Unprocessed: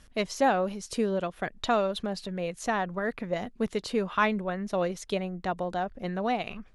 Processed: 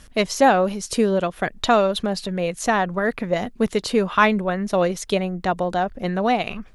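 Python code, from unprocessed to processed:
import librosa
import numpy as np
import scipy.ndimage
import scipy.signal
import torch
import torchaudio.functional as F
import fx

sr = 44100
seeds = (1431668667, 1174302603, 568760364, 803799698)

y = fx.high_shelf(x, sr, hz=9100.0, db=5.5)
y = y * 10.0 ** (8.5 / 20.0)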